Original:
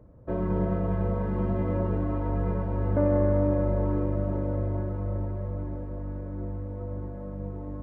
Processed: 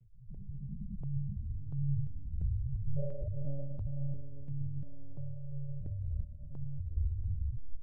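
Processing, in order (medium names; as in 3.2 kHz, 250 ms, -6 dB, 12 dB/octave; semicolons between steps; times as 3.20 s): tape stop on the ending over 1.13 s; peaking EQ 330 Hz -11.5 dB 1 oct; compression 6:1, threshold -28 dBFS, peak gain reduction 7.5 dB; loudest bins only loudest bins 2; chorus voices 2, 1.2 Hz, delay 29 ms, depth 3 ms; doubling 14 ms -8 dB; echo that smears into a reverb 452 ms, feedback 57%, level -5 dB; monotone LPC vocoder at 8 kHz 140 Hz; stepped phaser 2.9 Hz 280–2000 Hz; trim +7.5 dB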